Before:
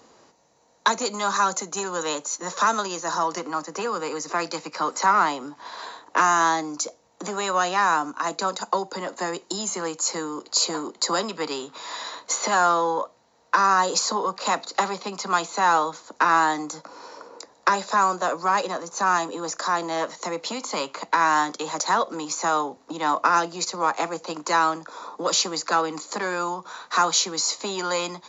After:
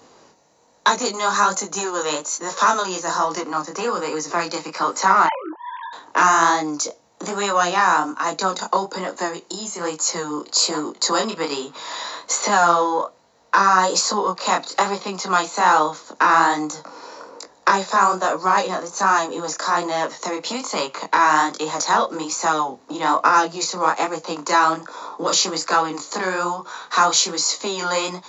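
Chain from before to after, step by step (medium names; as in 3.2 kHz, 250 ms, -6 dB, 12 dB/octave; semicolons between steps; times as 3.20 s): 5.26–5.93 s: formants replaced by sine waves; 9.26–9.81 s: compression 2.5:1, threshold -33 dBFS, peak gain reduction 6.5 dB; chorus 1.2 Hz, delay 19.5 ms, depth 7.6 ms; trim +7 dB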